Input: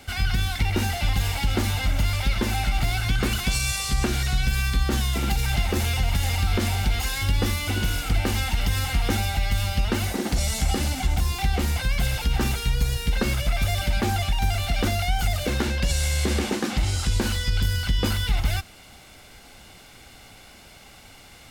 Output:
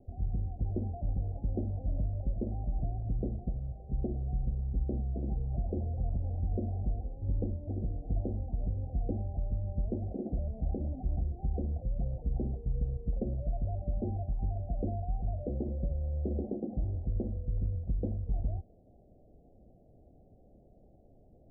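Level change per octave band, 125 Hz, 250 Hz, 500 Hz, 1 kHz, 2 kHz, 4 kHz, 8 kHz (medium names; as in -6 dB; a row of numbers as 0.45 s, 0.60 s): -9.0 dB, -9.0 dB, -9.0 dB, -19.0 dB, under -40 dB, under -40 dB, under -40 dB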